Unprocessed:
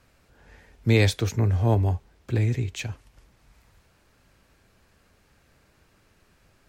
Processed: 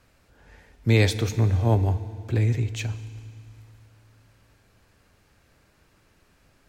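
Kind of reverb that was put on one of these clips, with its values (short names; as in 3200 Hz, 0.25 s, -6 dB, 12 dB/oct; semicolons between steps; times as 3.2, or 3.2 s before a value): FDN reverb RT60 2.4 s, low-frequency decay 1.3×, high-frequency decay 0.95×, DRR 13 dB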